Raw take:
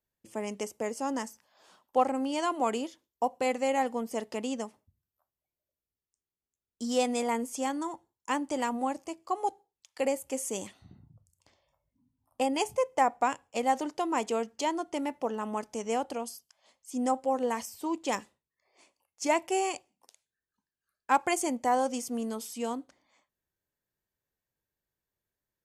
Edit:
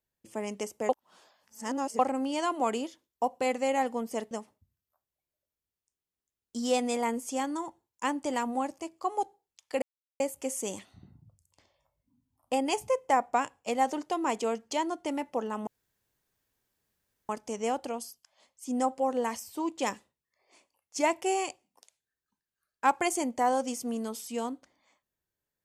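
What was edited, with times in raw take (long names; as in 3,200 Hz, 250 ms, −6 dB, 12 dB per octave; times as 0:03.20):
0:00.89–0:01.99: reverse
0:04.31–0:04.57: remove
0:10.08: splice in silence 0.38 s
0:15.55: splice in room tone 1.62 s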